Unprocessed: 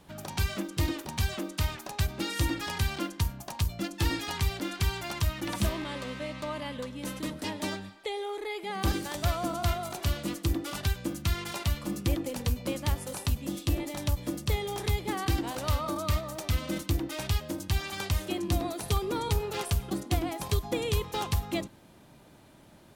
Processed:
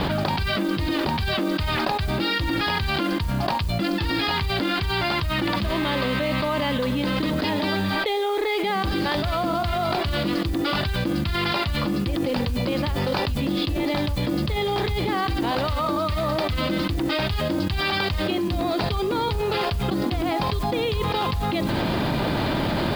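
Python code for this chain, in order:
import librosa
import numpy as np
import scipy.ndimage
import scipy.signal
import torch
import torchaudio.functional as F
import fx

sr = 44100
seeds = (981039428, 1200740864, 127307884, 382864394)

y = scipy.signal.sosfilt(scipy.signal.cheby1(6, 1.0, 4900.0, 'lowpass', fs=sr, output='sos'), x)
y = fx.mod_noise(y, sr, seeds[0], snr_db=25)
y = fx.env_flatten(y, sr, amount_pct=100)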